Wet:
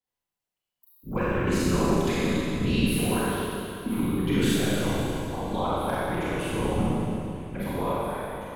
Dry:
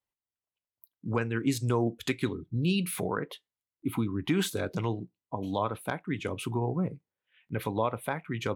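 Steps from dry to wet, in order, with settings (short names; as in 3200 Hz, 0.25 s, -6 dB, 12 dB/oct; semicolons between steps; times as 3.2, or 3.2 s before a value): ending faded out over 1.09 s; whisperiser; Schroeder reverb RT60 2.8 s, combs from 31 ms, DRR -9 dB; gain -4 dB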